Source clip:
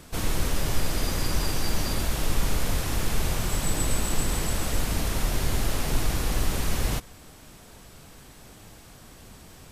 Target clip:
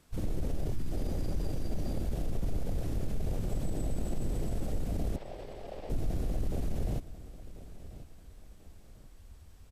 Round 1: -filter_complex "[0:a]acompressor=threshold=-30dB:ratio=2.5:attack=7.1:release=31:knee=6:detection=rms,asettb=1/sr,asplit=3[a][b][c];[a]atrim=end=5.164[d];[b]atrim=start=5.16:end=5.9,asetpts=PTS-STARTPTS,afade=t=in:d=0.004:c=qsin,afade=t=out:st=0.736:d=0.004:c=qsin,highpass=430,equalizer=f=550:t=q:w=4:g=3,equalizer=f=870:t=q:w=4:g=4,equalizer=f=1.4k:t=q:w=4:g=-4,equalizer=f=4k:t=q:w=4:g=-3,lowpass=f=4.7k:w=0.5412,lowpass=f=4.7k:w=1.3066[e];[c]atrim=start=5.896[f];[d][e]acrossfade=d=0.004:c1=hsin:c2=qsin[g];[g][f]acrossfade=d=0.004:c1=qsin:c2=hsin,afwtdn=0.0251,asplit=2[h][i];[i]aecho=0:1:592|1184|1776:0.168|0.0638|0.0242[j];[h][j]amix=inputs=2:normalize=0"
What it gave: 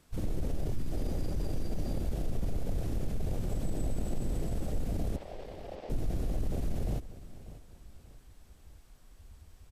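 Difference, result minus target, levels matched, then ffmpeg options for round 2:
echo 0.448 s early
-filter_complex "[0:a]acompressor=threshold=-30dB:ratio=2.5:attack=7.1:release=31:knee=6:detection=rms,asettb=1/sr,asplit=3[a][b][c];[a]atrim=end=5.164[d];[b]atrim=start=5.16:end=5.9,asetpts=PTS-STARTPTS,afade=t=in:d=0.004:c=qsin,afade=t=out:st=0.736:d=0.004:c=qsin,highpass=430,equalizer=f=550:t=q:w=4:g=3,equalizer=f=870:t=q:w=4:g=4,equalizer=f=1.4k:t=q:w=4:g=-4,equalizer=f=4k:t=q:w=4:g=-3,lowpass=f=4.7k:w=0.5412,lowpass=f=4.7k:w=1.3066[e];[c]atrim=start=5.896[f];[d][e]acrossfade=d=0.004:c1=hsin:c2=qsin[g];[g][f]acrossfade=d=0.004:c1=qsin:c2=hsin,afwtdn=0.0251,asplit=2[h][i];[i]aecho=0:1:1040|2080|3120:0.168|0.0638|0.0242[j];[h][j]amix=inputs=2:normalize=0"

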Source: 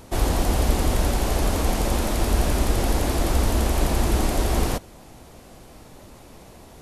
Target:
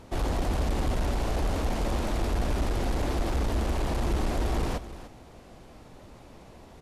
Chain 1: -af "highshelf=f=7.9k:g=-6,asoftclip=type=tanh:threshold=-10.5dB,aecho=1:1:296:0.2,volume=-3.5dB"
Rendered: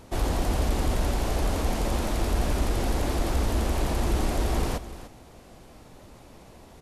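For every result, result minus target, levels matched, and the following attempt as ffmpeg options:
soft clip: distortion -9 dB; 8000 Hz band +4.0 dB
-af "highshelf=f=7.9k:g=-6,asoftclip=type=tanh:threshold=-17.5dB,aecho=1:1:296:0.2,volume=-3.5dB"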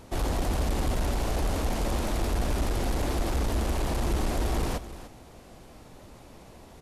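8000 Hz band +4.0 dB
-af "highshelf=f=7.9k:g=-15,asoftclip=type=tanh:threshold=-17.5dB,aecho=1:1:296:0.2,volume=-3.5dB"

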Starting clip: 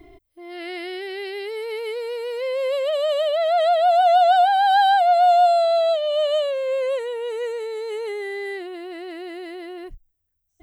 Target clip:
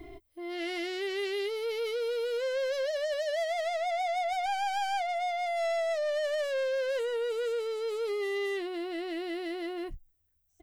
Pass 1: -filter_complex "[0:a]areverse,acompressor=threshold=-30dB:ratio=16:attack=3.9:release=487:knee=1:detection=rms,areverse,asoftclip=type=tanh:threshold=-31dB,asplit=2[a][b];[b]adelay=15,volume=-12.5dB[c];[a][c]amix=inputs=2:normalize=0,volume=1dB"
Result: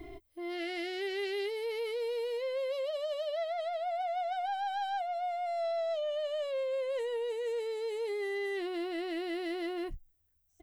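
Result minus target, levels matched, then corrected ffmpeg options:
compressor: peak gain reduction +11 dB
-filter_complex "[0:a]areverse,acompressor=threshold=-18.5dB:ratio=16:attack=3.9:release=487:knee=1:detection=rms,areverse,asoftclip=type=tanh:threshold=-31dB,asplit=2[a][b];[b]adelay=15,volume=-12.5dB[c];[a][c]amix=inputs=2:normalize=0,volume=1dB"

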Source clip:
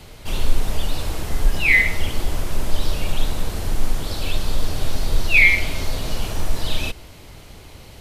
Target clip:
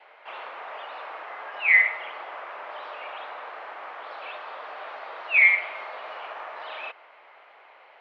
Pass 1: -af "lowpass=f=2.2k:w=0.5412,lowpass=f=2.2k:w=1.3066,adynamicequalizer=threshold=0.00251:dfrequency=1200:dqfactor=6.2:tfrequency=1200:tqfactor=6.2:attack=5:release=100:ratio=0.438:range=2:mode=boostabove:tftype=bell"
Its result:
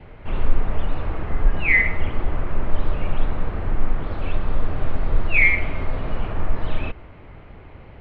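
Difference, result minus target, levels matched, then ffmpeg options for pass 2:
500 Hz band +11.0 dB
-af "lowpass=f=2.2k:w=0.5412,lowpass=f=2.2k:w=1.3066,adynamicequalizer=threshold=0.00251:dfrequency=1200:dqfactor=6.2:tfrequency=1200:tqfactor=6.2:attack=5:release=100:ratio=0.438:range=2:mode=boostabove:tftype=bell,highpass=f=650:w=0.5412,highpass=f=650:w=1.3066"

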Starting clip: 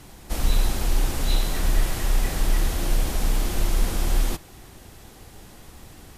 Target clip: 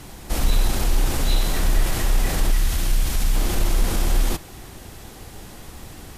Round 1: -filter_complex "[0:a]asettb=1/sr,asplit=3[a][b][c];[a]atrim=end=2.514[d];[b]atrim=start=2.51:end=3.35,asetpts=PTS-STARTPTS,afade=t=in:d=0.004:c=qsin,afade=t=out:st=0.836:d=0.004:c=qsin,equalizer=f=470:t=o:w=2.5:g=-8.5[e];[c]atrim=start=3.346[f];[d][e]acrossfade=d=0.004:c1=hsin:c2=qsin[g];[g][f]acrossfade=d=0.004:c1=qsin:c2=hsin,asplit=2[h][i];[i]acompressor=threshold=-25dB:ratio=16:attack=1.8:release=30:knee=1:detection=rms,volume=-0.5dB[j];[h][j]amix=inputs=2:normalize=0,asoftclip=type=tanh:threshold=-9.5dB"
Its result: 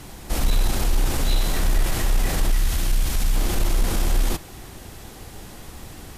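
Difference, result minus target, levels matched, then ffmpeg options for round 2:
soft clip: distortion +12 dB
-filter_complex "[0:a]asettb=1/sr,asplit=3[a][b][c];[a]atrim=end=2.514[d];[b]atrim=start=2.51:end=3.35,asetpts=PTS-STARTPTS,afade=t=in:d=0.004:c=qsin,afade=t=out:st=0.836:d=0.004:c=qsin,equalizer=f=470:t=o:w=2.5:g=-8.5[e];[c]atrim=start=3.346[f];[d][e]acrossfade=d=0.004:c1=hsin:c2=qsin[g];[g][f]acrossfade=d=0.004:c1=qsin:c2=hsin,asplit=2[h][i];[i]acompressor=threshold=-25dB:ratio=16:attack=1.8:release=30:knee=1:detection=rms,volume=-0.5dB[j];[h][j]amix=inputs=2:normalize=0,asoftclip=type=tanh:threshold=-2.5dB"

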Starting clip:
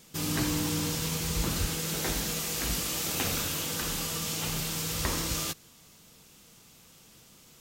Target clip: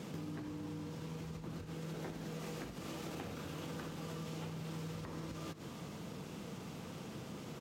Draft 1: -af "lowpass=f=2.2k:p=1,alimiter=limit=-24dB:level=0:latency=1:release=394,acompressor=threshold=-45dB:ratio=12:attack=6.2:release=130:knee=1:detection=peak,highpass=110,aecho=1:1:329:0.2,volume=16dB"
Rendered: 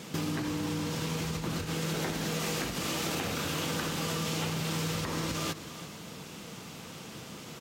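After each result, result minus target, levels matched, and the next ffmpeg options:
compressor: peak gain reduction -12 dB; 2000 Hz band +2.5 dB
-af "lowpass=f=2.2k:p=1,alimiter=limit=-24dB:level=0:latency=1:release=394,acompressor=threshold=-57dB:ratio=12:attack=6.2:release=130:knee=1:detection=peak,highpass=110,aecho=1:1:329:0.2,volume=16dB"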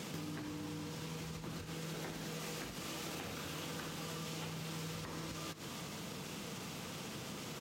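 2000 Hz band +3.5 dB
-af "lowpass=f=700:p=1,alimiter=limit=-24dB:level=0:latency=1:release=394,acompressor=threshold=-57dB:ratio=12:attack=6.2:release=130:knee=1:detection=peak,highpass=110,aecho=1:1:329:0.2,volume=16dB"

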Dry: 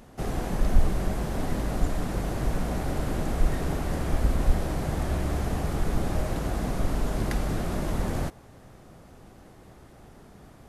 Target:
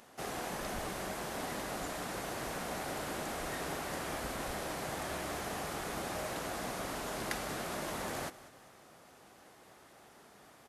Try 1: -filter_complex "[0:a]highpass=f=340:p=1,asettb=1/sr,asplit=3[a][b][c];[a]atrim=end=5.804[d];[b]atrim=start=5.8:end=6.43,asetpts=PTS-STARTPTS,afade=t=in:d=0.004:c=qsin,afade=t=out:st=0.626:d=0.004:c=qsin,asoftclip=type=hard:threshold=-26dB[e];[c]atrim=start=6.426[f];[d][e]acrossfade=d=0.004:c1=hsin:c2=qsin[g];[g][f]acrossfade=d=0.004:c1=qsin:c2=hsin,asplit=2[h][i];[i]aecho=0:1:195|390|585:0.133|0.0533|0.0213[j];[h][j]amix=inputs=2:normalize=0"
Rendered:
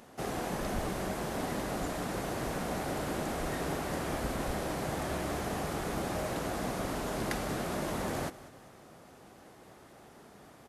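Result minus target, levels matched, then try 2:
250 Hz band +3.5 dB
-filter_complex "[0:a]highpass=f=950:p=1,asettb=1/sr,asplit=3[a][b][c];[a]atrim=end=5.804[d];[b]atrim=start=5.8:end=6.43,asetpts=PTS-STARTPTS,afade=t=in:d=0.004:c=qsin,afade=t=out:st=0.626:d=0.004:c=qsin,asoftclip=type=hard:threshold=-26dB[e];[c]atrim=start=6.426[f];[d][e]acrossfade=d=0.004:c1=hsin:c2=qsin[g];[g][f]acrossfade=d=0.004:c1=qsin:c2=hsin,asplit=2[h][i];[i]aecho=0:1:195|390|585:0.133|0.0533|0.0213[j];[h][j]amix=inputs=2:normalize=0"

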